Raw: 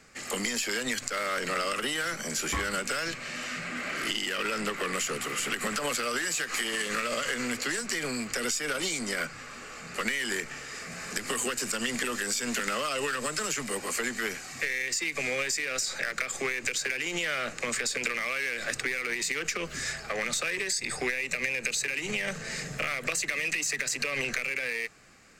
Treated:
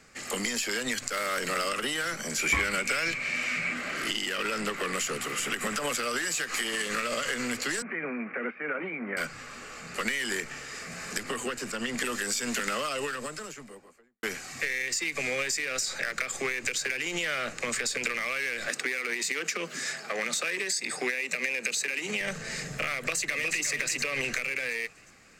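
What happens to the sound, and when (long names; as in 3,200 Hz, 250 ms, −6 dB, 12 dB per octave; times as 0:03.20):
0:01.09–0:01.69: high-shelf EQ 9,600 Hz +9.5 dB
0:02.38–0:03.74: parametric band 2,300 Hz +14 dB 0.25 octaves
0:05.40–0:05.99: notch filter 4,300 Hz
0:07.82–0:09.17: Chebyshev band-pass filter 160–2,400 Hz, order 5
0:11.23–0:11.98: high-shelf EQ 4,100 Hz −10.5 dB
0:12.69–0:14.23: fade out and dull
0:18.69–0:22.21: Butterworth high-pass 170 Hz
0:22.95–0:23.66: delay throw 360 ms, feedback 45%, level −8 dB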